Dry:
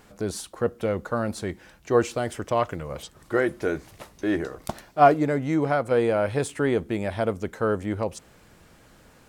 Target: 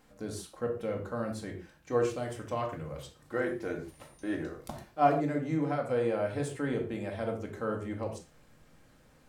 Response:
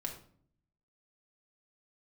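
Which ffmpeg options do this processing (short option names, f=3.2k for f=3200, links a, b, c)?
-filter_complex "[0:a]asettb=1/sr,asplit=3[a][b][c];[a]atrim=end=3.884[d];[b]atrim=start=3.88:end=4.35,asetpts=PTS-STARTPTS,afade=t=in:d=0.004:c=qsin,afade=t=out:st=0.466:d=0.004:c=qsin,aeval=exprs='val(0)+0.00224*sin(2*PI*9200*n/s)':c=same[e];[c]atrim=start=4.346[f];[d][e]acrossfade=d=0.004:c1=hsin:c2=qsin[g];[g][f]acrossfade=d=0.004:c1=qsin:c2=hsin[h];[1:a]atrim=start_sample=2205,afade=t=out:st=0.2:d=0.01,atrim=end_sample=9261[i];[h][i]afir=irnorm=-1:irlink=0,volume=-8.5dB"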